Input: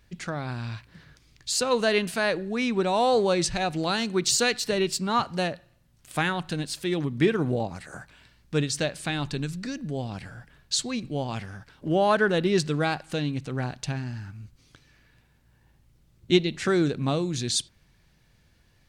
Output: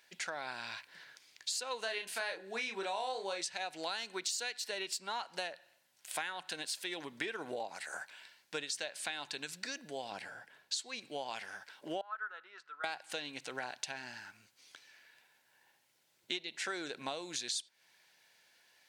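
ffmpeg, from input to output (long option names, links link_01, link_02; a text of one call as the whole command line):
ffmpeg -i in.wav -filter_complex "[0:a]asettb=1/sr,asplit=3[link_01][link_02][link_03];[link_01]atrim=end=1.814[link_04];[link_02]atrim=start=1.81:end=3.41,asetpts=PTS-STARTPTS,afade=type=in:duration=0.004:curve=qsin,afade=type=out:start_time=1.596:duration=0.004:curve=qsin,asplit=2[link_05][link_06];[link_06]adelay=31,volume=-5dB[link_07];[link_05][link_07]amix=inputs=2:normalize=0,atrim=end_sample=70560[link_08];[link_03]atrim=start=3.406[link_09];[link_04][link_08]acrossfade=duration=0.004:curve1=hsin:curve2=qsin[link_10];[link_10][link_09]acrossfade=duration=0.004:curve1=qsin:curve2=hsin,asettb=1/sr,asplit=3[link_11][link_12][link_13];[link_11]atrim=end=10.114[link_14];[link_12]atrim=start=10.11:end=10.74,asetpts=PTS-STARTPTS,afade=type=in:duration=0.004:curve=qsin,afade=type=out:start_time=0.626:duration=0.004:curve=qsin,tiltshelf=frequency=970:gain=4.5[link_15];[link_13]atrim=start=10.736[link_16];[link_14][link_15]acrossfade=duration=0.004:curve1=hsin:curve2=qsin[link_17];[link_17][link_16]acrossfade=duration=0.004:curve1=qsin:curve2=hsin,asettb=1/sr,asplit=3[link_18][link_19][link_20];[link_18]atrim=end=12.014[link_21];[link_19]atrim=start=12.01:end=12.84,asetpts=PTS-STARTPTS,afade=type=in:duration=0.004:curve=qsin,afade=type=out:start_time=0.826:duration=0.004:curve=qsin,bandpass=frequency=1300:width_type=q:width=12[link_22];[link_20]atrim=start=12.836[link_23];[link_21][link_22]acrossfade=duration=0.004:curve1=hsin:curve2=qsin[link_24];[link_24][link_23]acrossfade=duration=0.004:curve1=qsin:curve2=hsin,highpass=770,bandreject=frequency=1200:width=5.4,acompressor=threshold=-38dB:ratio=6,volume=2dB" out.wav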